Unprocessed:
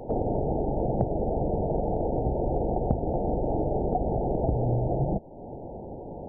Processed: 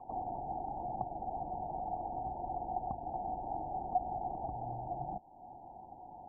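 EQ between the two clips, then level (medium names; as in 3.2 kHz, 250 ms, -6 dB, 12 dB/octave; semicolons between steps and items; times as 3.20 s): cascade formant filter a; high-order bell 540 Hz -12.5 dB 1 oct; +7.5 dB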